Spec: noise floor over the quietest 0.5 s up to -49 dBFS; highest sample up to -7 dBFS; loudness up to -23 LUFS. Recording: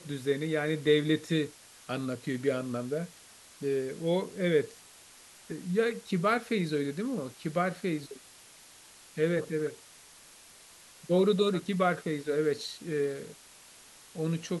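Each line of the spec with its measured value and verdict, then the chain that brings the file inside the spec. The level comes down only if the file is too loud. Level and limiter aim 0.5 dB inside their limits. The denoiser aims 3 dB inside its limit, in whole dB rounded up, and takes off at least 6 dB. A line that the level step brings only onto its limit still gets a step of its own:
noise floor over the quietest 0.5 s -54 dBFS: OK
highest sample -13.0 dBFS: OK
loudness -30.5 LUFS: OK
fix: none

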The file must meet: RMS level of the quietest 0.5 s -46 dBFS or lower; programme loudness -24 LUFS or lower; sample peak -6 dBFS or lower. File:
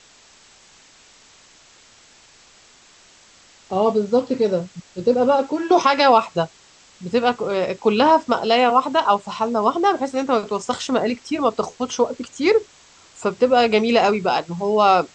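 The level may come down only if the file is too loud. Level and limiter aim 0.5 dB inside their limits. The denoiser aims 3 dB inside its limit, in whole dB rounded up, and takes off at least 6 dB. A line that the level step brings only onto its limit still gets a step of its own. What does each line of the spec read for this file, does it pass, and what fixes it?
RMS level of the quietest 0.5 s -51 dBFS: OK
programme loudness -19.0 LUFS: fail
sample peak -3.0 dBFS: fail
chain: gain -5.5 dB

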